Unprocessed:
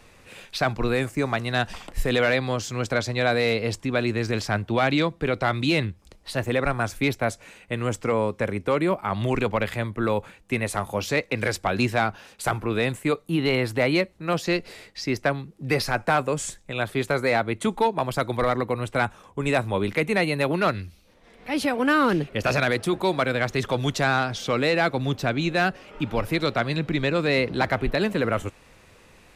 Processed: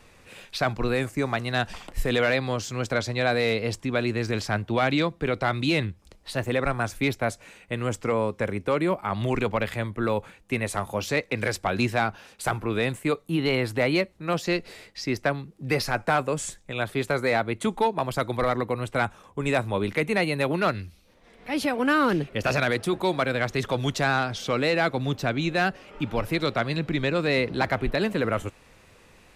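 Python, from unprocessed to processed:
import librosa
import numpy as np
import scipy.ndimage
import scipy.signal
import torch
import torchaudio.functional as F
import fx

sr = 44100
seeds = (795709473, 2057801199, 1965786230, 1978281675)

y = fx.wow_flutter(x, sr, seeds[0], rate_hz=2.1, depth_cents=26.0)
y = F.gain(torch.from_numpy(y), -1.5).numpy()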